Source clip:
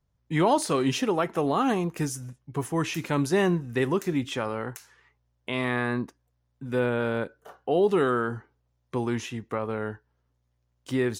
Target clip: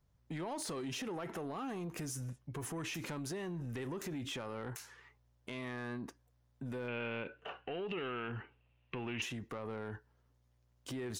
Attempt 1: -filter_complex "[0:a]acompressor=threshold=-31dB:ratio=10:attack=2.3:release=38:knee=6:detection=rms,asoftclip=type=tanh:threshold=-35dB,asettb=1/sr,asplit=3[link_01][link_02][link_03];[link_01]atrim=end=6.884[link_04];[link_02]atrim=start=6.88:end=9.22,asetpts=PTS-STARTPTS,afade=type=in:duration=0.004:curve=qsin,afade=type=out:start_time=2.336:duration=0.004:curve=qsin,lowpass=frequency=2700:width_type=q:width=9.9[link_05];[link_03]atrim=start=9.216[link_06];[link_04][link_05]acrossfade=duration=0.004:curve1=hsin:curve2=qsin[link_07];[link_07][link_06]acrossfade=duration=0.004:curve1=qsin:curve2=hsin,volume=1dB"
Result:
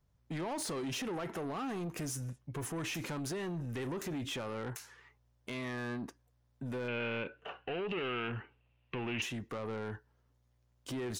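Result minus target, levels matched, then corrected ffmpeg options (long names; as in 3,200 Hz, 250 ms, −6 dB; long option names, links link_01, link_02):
downward compressor: peak gain reduction −5.5 dB
-filter_complex "[0:a]acompressor=threshold=-37dB:ratio=10:attack=2.3:release=38:knee=6:detection=rms,asoftclip=type=tanh:threshold=-35dB,asettb=1/sr,asplit=3[link_01][link_02][link_03];[link_01]atrim=end=6.884[link_04];[link_02]atrim=start=6.88:end=9.22,asetpts=PTS-STARTPTS,afade=type=in:duration=0.004:curve=qsin,afade=type=out:start_time=2.336:duration=0.004:curve=qsin,lowpass=frequency=2700:width_type=q:width=9.9[link_05];[link_03]atrim=start=9.216[link_06];[link_04][link_05]acrossfade=duration=0.004:curve1=hsin:curve2=qsin[link_07];[link_07][link_06]acrossfade=duration=0.004:curve1=qsin:curve2=hsin,volume=1dB"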